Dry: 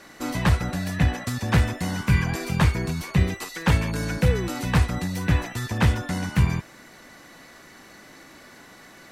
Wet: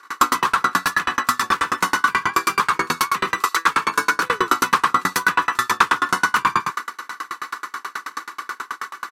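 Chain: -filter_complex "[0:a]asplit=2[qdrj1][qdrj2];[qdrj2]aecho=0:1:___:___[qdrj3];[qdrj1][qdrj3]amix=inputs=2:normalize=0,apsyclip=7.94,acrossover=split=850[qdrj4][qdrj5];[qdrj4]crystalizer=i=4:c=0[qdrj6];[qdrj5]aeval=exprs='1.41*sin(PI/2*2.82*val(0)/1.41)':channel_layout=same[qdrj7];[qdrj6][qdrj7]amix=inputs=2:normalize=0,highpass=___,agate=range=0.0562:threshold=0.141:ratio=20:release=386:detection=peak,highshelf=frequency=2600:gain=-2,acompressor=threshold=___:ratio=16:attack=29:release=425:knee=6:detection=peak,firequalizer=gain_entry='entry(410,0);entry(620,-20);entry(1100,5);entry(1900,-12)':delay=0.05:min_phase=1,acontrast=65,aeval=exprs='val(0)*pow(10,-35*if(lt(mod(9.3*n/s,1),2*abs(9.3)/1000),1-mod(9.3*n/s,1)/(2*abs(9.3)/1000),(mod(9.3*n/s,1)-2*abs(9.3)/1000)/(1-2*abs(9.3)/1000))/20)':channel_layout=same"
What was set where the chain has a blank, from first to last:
106, 0.355, 520, 0.398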